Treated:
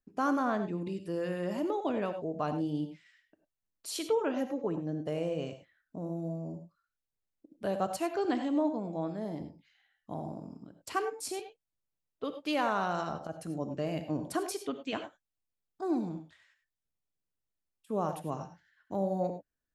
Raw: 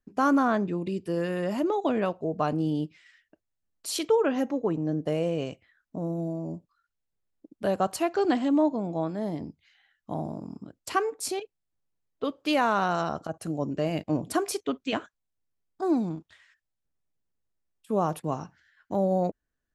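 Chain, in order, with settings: non-linear reverb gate 0.12 s rising, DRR 8.5 dB; gain -6.5 dB

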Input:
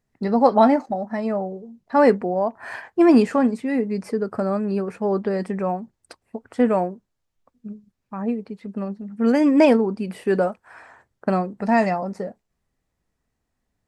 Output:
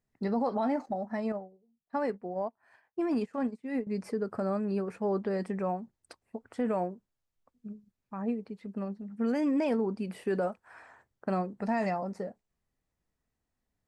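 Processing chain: limiter -14.5 dBFS, peak gain reduction 10 dB; 1.32–3.87 upward expander 2.5:1, over -34 dBFS; gain -7.5 dB

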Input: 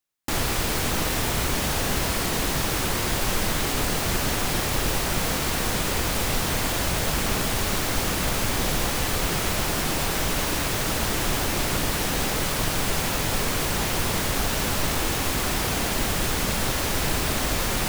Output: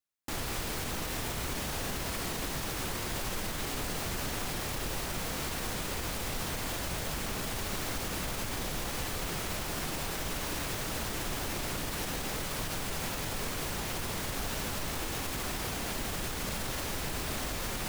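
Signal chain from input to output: limiter -17 dBFS, peak gain reduction 6 dB; gain -8 dB

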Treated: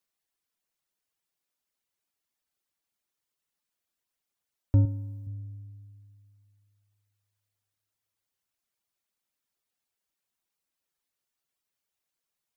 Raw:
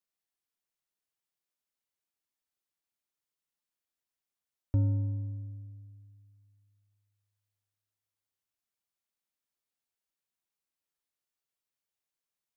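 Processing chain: reverb removal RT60 0.64 s; 4.85–5.27 tilt +2 dB/oct; gain +6 dB

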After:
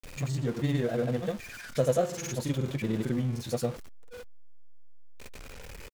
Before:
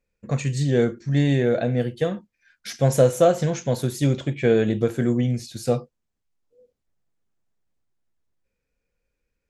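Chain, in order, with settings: zero-crossing step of -27.5 dBFS; tempo 1.6×; grains, pitch spread up and down by 0 st; gain -8 dB

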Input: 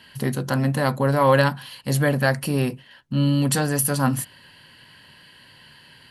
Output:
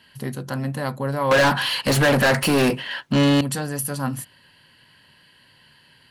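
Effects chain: 1.31–3.41 overdrive pedal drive 32 dB, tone 3700 Hz, clips at -4 dBFS; gain -5 dB

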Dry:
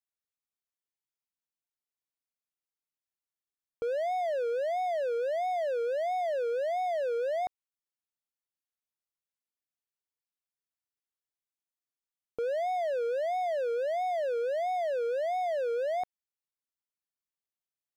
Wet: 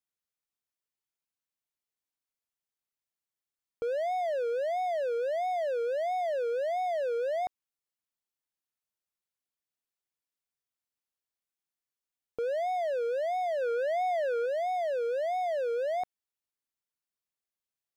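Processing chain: 13.61–14.46 dynamic EQ 1400 Hz, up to +7 dB, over -51 dBFS, Q 1.3

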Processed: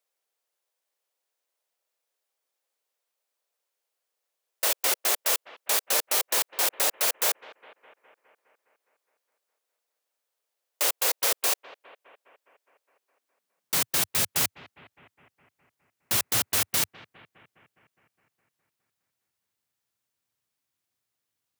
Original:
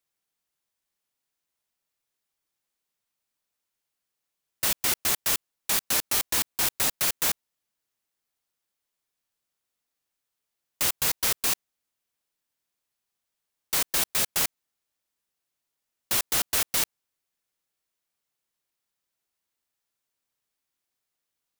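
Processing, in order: high-pass sweep 510 Hz -> 97 Hz, 12.9–13.96; analogue delay 0.206 s, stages 4096, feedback 65%, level -18 dB

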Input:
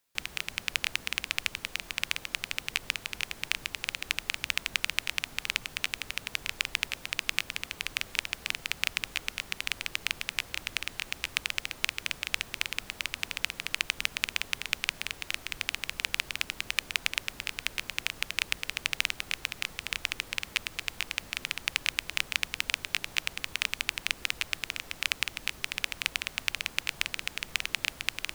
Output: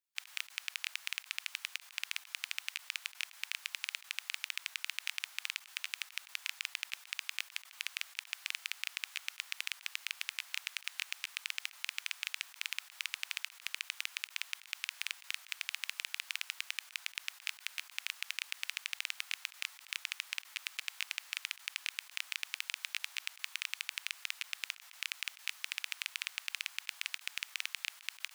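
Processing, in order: Bessel high-pass 1400 Hz, order 6; level quantiser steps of 18 dB; gain -2 dB

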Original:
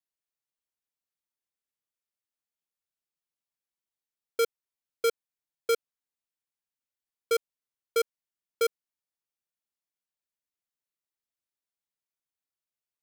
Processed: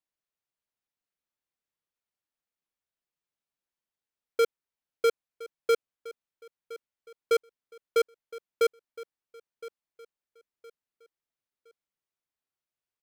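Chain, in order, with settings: high shelf 4500 Hz -9.5 dB; on a send: feedback echo 1.015 s, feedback 34%, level -18 dB; on the sum: gain +2.5 dB

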